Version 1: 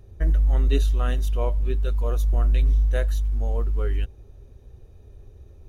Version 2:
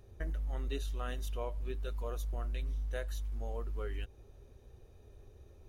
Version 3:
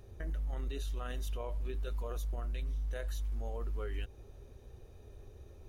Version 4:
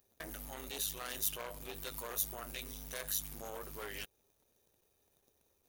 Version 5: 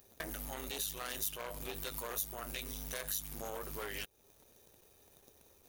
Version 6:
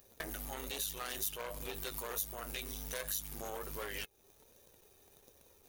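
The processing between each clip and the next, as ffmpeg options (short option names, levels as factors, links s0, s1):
-af "lowshelf=f=250:g=-8.5,acompressor=threshold=0.02:ratio=2.5,volume=0.75"
-af "alimiter=level_in=3.35:limit=0.0631:level=0:latency=1:release=29,volume=0.299,volume=1.5"
-af "aeval=exprs='0.0299*(cos(1*acos(clip(val(0)/0.0299,-1,1)))-cos(1*PI/2))+0.00841*(cos(3*acos(clip(val(0)/0.0299,-1,1)))-cos(3*PI/2))+0.0015*(cos(7*acos(clip(val(0)/0.0299,-1,1)))-cos(7*PI/2))':c=same,aemphasis=mode=production:type=riaa,volume=1.12"
-af "acompressor=threshold=0.00158:ratio=2,volume=3.55"
-af "flanger=delay=1.7:depth=1.1:regen=73:speed=1.3:shape=triangular,volume=1.68"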